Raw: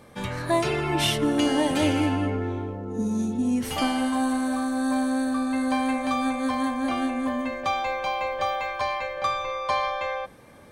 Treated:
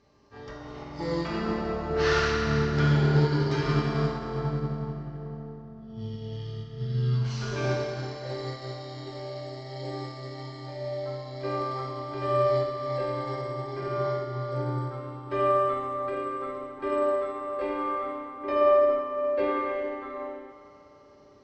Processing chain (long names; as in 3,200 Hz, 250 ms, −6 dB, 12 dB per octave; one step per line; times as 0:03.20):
wrong playback speed 15 ips tape played at 7.5 ips
low-pass filter 7,200 Hz 12 dB per octave
bass and treble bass −6 dB, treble +2 dB
convolution reverb RT60 3.9 s, pre-delay 3 ms, DRR −4.5 dB
expander for the loud parts 1.5 to 1, over −30 dBFS
level −4 dB